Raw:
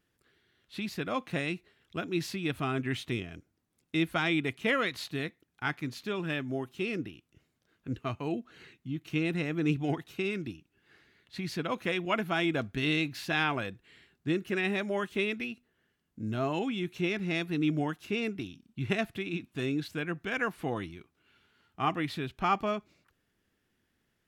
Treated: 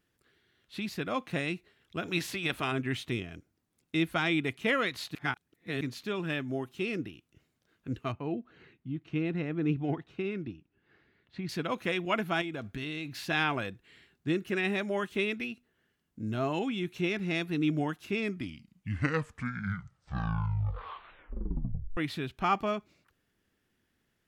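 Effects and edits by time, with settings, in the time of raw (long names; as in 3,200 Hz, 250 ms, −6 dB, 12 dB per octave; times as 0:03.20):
0:02.03–0:02.71: ceiling on every frequency bin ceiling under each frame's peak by 14 dB
0:05.15–0:05.81: reverse
0:08.12–0:11.49: head-to-tape spacing loss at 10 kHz 26 dB
0:12.41–0:13.21: downward compressor, threshold −33 dBFS
0:18.04: tape stop 3.93 s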